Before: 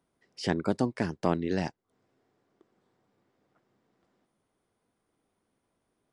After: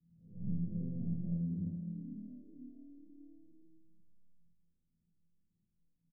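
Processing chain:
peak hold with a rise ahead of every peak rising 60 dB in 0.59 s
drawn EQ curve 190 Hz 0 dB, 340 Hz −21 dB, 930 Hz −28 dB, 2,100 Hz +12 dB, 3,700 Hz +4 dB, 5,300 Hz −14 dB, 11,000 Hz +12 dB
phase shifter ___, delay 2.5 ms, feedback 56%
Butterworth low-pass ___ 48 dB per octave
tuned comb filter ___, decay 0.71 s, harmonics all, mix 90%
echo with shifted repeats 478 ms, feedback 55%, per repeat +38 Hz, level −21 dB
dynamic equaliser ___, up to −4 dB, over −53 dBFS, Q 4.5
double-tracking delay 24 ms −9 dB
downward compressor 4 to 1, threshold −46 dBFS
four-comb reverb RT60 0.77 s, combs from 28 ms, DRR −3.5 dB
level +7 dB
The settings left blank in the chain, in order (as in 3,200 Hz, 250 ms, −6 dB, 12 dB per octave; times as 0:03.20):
1.8 Hz, 560 Hz, 170 Hz, 160 Hz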